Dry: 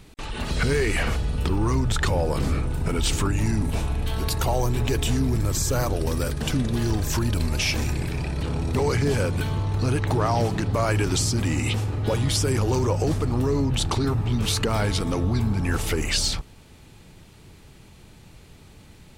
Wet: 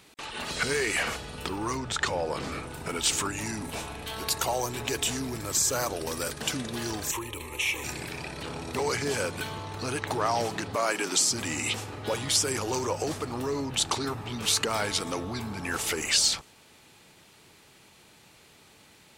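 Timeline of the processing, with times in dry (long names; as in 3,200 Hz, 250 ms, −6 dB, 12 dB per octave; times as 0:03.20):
0:01.77–0:02.52: high-frequency loss of the air 51 metres
0:07.11–0:07.84: phaser with its sweep stopped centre 1,000 Hz, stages 8
0:10.76–0:11.31: Butterworth high-pass 170 Hz
whole clip: high-pass filter 660 Hz 6 dB per octave; dynamic equaliser 7,200 Hz, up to +4 dB, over −43 dBFS, Q 1.5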